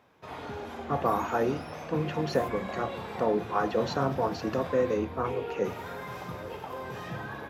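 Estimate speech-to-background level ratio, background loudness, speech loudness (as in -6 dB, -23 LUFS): 8.0 dB, -38.5 LUFS, -30.5 LUFS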